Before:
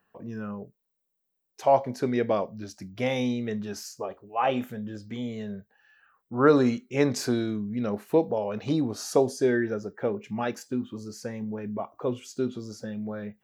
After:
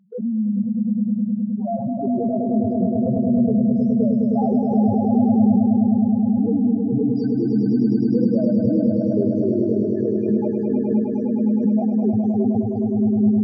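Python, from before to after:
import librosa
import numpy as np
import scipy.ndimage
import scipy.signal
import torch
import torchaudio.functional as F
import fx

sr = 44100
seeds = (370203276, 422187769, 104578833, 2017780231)

p1 = fx.low_shelf(x, sr, hz=340.0, db=6.5)
p2 = fx.notch(p1, sr, hz=540.0, q=16.0)
p3 = fx.leveller(p2, sr, passes=5)
p4 = fx.level_steps(p3, sr, step_db=18)
p5 = fx.spec_topn(p4, sr, count=1)
p6 = fx.spacing_loss(p5, sr, db_at_10k=35)
p7 = p6 + fx.echo_swell(p6, sr, ms=104, loudest=5, wet_db=-6, dry=0)
p8 = fx.pre_swell(p7, sr, db_per_s=65.0)
y = p8 * 10.0 ** (3.5 / 20.0)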